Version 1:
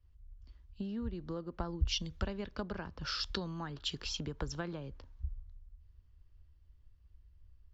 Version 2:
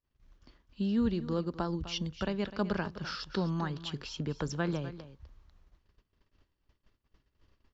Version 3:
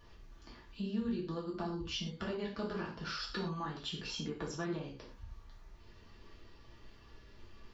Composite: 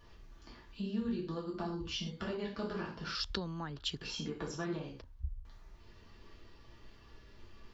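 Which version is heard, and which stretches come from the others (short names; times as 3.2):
3
3.15–4.01 from 1
5.01–5.45 from 1
not used: 2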